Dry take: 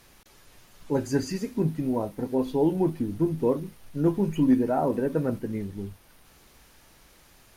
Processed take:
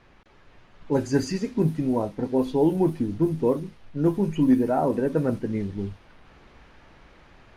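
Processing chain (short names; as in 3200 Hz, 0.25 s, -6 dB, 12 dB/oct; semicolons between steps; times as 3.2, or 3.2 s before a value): vocal rider within 4 dB 2 s; low-pass opened by the level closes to 2300 Hz, open at -19 dBFS; gain +2 dB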